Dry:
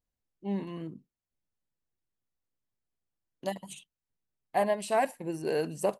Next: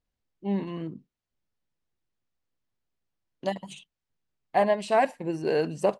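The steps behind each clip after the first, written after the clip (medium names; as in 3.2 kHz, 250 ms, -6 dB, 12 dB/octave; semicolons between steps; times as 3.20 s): low-pass 5.4 kHz 12 dB/octave; trim +4.5 dB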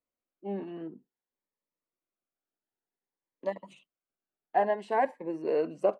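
three-band isolator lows -22 dB, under 260 Hz, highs -18 dB, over 2.1 kHz; Shepard-style phaser rising 0.54 Hz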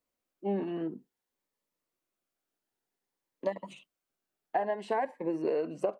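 compression 12:1, threshold -32 dBFS, peak gain reduction 12.5 dB; trim +5.5 dB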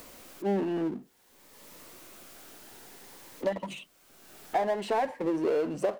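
upward compressor, threshold -43 dBFS; power-law waveshaper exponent 0.7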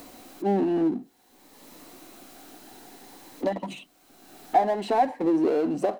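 small resonant body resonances 280/740/4000 Hz, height 10 dB, ringing for 25 ms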